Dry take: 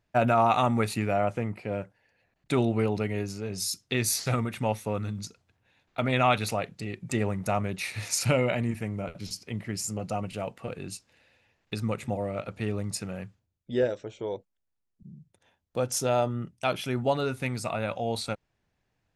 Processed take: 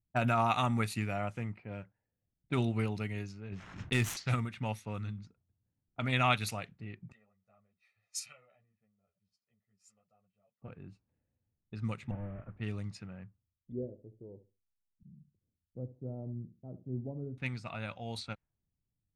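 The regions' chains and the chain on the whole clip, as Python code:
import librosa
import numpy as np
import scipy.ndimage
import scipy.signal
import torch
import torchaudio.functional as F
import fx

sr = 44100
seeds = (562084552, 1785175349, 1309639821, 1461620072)

y = fx.chain(x, sr, fx.median_filter(points=9),
    fx.leveller(passes=1),
    fx.pre_swell(db_per_s=52.0), at=(3.52, 4.17))
y = fx.chain(y, sr, fx.differentiator(),
    fx.comb(ms=1.6, depth=0.83),
    fx.ensemble(), at=(7.12, 10.62))
y = fx.chain(y, sr, fx.delta_mod(bps=16000, step_db=-46.0),
    fx.lowpass(hz=1700.0, slope=12),
    fx.low_shelf(hz=69.0, db=9.5), at=(12.11, 12.57))
y = fx.chain(y, sr, fx.cheby2_lowpass(hz=2800.0, order=4, stop_db=80),
    fx.room_flutter(wall_m=11.9, rt60_s=0.31), at=(13.72, 17.38))
y = fx.env_lowpass(y, sr, base_hz=330.0, full_db=-24.0)
y = fx.peak_eq(y, sr, hz=510.0, db=-10.0, octaves=1.9)
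y = fx.upward_expand(y, sr, threshold_db=-38.0, expansion=1.5)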